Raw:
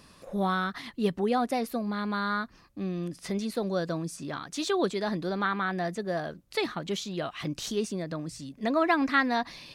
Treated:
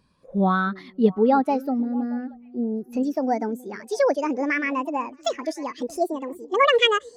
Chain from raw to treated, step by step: gliding tape speed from 94% -> 178%; time-frequency box 1.81–2.93 s, 910–10000 Hz -16 dB; repeats whose band climbs or falls 313 ms, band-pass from 310 Hz, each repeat 1.4 oct, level -10.5 dB; spectral contrast expander 1.5:1; trim +5.5 dB

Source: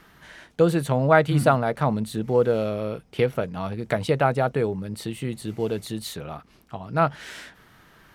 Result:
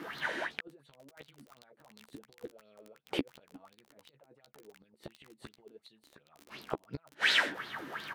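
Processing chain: high-pass 130 Hz 12 dB/octave; tone controls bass -5 dB, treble -6 dB; compressor with a negative ratio -28 dBFS, ratio -1; inverted gate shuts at -24 dBFS, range -40 dB; crackle 21 per s -41 dBFS; doubling 14 ms -7.5 dB; sweeping bell 2.8 Hz 270–4300 Hz +16 dB; trim +1.5 dB

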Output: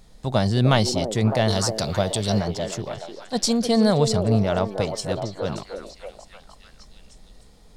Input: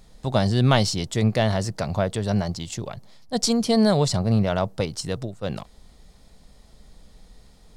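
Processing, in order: 1.48–2.39 s: resonant high shelf 2.8 kHz +8.5 dB, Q 1.5; repeats whose band climbs or falls 304 ms, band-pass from 400 Hz, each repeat 0.7 oct, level -2.5 dB

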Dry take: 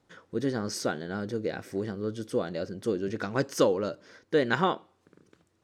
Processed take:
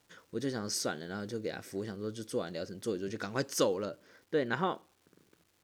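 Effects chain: treble shelf 3.3 kHz +9.5 dB, from 3.85 s -4 dB; crackle 560 per s -51 dBFS; trim -6 dB

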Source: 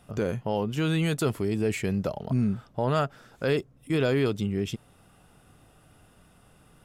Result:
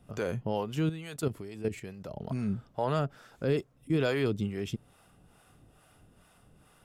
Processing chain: 0.89–2.14 s: level held to a coarse grid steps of 12 dB; harmonic tremolo 2.3 Hz, depth 70%, crossover 480 Hz

